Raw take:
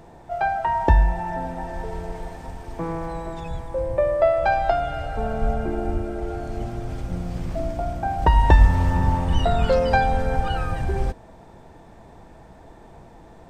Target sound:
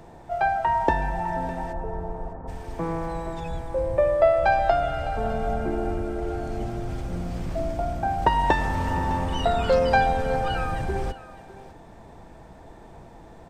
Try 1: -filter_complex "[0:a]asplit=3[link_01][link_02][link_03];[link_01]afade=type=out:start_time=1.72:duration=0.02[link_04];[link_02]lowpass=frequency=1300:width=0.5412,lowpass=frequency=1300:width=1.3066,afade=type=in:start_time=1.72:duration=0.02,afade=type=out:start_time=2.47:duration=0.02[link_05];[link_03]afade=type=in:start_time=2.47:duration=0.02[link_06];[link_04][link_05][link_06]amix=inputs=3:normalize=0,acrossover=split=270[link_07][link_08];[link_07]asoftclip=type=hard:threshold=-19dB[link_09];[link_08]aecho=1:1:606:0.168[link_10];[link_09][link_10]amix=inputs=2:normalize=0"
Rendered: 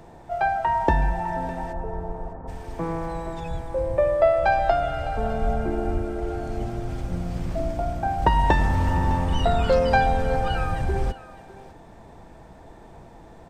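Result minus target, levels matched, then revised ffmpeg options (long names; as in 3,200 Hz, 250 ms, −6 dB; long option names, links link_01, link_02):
hard clipping: distortion −4 dB
-filter_complex "[0:a]asplit=3[link_01][link_02][link_03];[link_01]afade=type=out:start_time=1.72:duration=0.02[link_04];[link_02]lowpass=frequency=1300:width=0.5412,lowpass=frequency=1300:width=1.3066,afade=type=in:start_time=1.72:duration=0.02,afade=type=out:start_time=2.47:duration=0.02[link_05];[link_03]afade=type=in:start_time=2.47:duration=0.02[link_06];[link_04][link_05][link_06]amix=inputs=3:normalize=0,acrossover=split=270[link_07][link_08];[link_07]asoftclip=type=hard:threshold=-26.5dB[link_09];[link_08]aecho=1:1:606:0.168[link_10];[link_09][link_10]amix=inputs=2:normalize=0"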